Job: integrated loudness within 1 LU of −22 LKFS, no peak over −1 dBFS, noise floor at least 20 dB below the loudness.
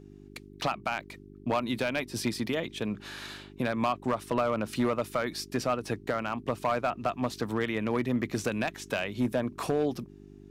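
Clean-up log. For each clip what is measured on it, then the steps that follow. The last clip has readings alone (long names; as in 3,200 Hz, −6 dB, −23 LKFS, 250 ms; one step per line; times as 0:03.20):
share of clipped samples 1.0%; peaks flattened at −20.0 dBFS; mains hum 50 Hz; hum harmonics up to 400 Hz; level of the hum −48 dBFS; integrated loudness −31.0 LKFS; sample peak −20.0 dBFS; target loudness −22.0 LKFS
→ clipped peaks rebuilt −20 dBFS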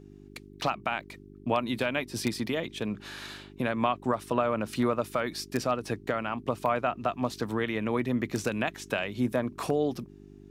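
share of clipped samples 0.0%; mains hum 50 Hz; hum harmonics up to 400 Hz; level of the hum −48 dBFS
→ hum removal 50 Hz, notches 8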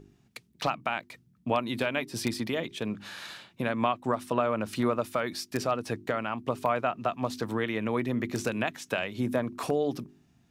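mains hum none found; integrated loudness −30.5 LKFS; sample peak −11.5 dBFS; target loudness −22.0 LKFS
→ level +8.5 dB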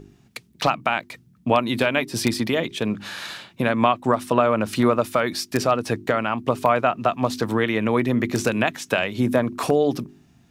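integrated loudness −22.0 LKFS; sample peak −3.0 dBFS; background noise floor −57 dBFS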